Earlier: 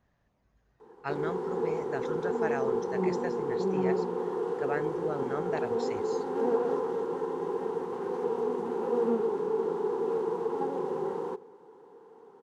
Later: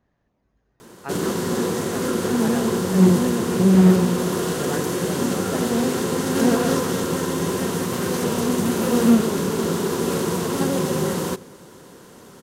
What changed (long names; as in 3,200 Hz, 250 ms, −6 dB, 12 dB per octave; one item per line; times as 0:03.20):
speech: add parametric band 310 Hz +6 dB 1.4 octaves
background: remove pair of resonant band-passes 610 Hz, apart 0.88 octaves